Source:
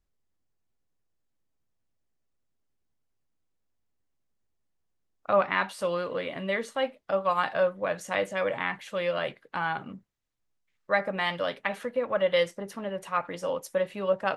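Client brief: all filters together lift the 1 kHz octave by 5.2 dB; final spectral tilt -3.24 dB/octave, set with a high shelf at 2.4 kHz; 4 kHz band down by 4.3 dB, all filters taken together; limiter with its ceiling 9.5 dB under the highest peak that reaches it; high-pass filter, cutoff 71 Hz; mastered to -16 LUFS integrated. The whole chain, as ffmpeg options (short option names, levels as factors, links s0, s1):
-af "highpass=71,equalizer=f=1000:t=o:g=7.5,highshelf=f=2400:g=-4.5,equalizer=f=4000:t=o:g=-3,volume=5.01,alimiter=limit=0.668:level=0:latency=1"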